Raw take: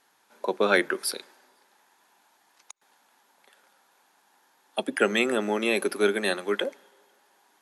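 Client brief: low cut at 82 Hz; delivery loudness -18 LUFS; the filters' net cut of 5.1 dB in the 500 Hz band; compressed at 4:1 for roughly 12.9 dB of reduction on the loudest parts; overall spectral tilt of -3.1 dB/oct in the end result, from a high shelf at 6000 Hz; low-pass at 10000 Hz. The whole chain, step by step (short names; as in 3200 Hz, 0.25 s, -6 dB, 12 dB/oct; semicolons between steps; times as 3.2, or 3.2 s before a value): HPF 82 Hz; LPF 10000 Hz; bell 500 Hz -6.5 dB; high shelf 6000 Hz -6 dB; compressor 4:1, threshold -35 dBFS; gain +20.5 dB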